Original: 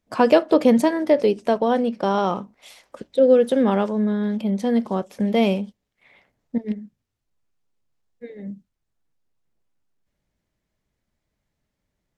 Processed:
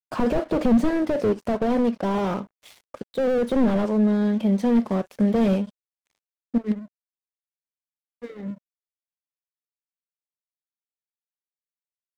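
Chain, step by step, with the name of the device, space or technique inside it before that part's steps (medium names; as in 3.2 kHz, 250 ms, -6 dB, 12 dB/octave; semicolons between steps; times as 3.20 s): early transistor amplifier (crossover distortion -47 dBFS; slew-rate limiter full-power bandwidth 37 Hz); trim +2.5 dB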